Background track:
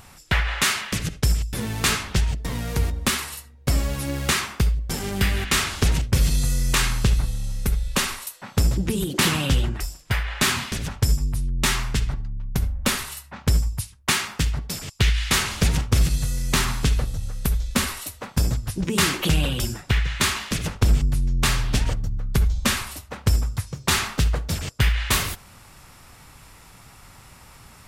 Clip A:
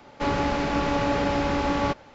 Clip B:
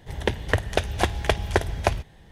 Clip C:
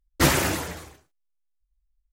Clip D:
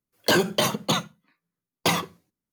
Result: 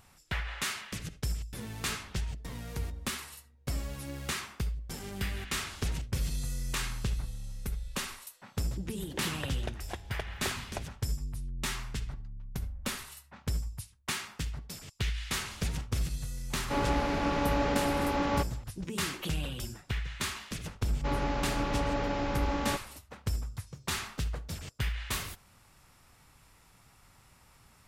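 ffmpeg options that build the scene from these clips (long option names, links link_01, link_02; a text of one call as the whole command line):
ffmpeg -i bed.wav -i cue0.wav -i cue1.wav -filter_complex "[1:a]asplit=2[link_01][link_02];[0:a]volume=-13dB[link_03];[2:a]atrim=end=2.31,asetpts=PTS-STARTPTS,volume=-17.5dB,afade=type=in:duration=0.004:curve=hsin,afade=type=out:start_time=2.306:duration=0.004:curve=hsin,adelay=392490S[link_04];[link_01]atrim=end=2.14,asetpts=PTS-STARTPTS,volume=-5dB,afade=type=in:duration=0.004:curve=hsin,afade=type=out:start_time=2.136:duration=0.004:curve=hsin,adelay=16500[link_05];[link_02]atrim=end=2.14,asetpts=PTS-STARTPTS,volume=-8dB,afade=type=in:duration=0.004:curve=hsin,afade=type=out:start_time=2.136:duration=0.004:curve=hsin,adelay=919044S[link_06];[link_03][link_04][link_05][link_06]amix=inputs=4:normalize=0" out.wav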